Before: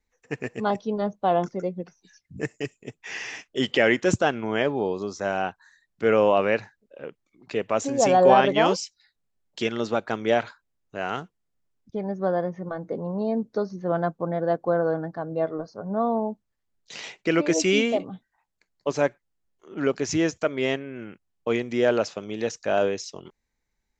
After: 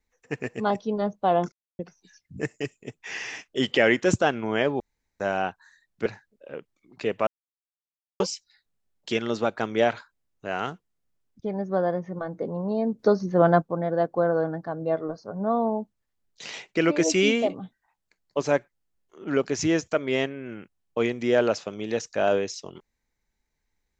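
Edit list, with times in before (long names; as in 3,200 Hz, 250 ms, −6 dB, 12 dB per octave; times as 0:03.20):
0:01.52–0:01.79: silence
0:04.80–0:05.20: fill with room tone
0:06.06–0:06.56: remove
0:07.77–0:08.70: silence
0:13.49–0:14.12: clip gain +6.5 dB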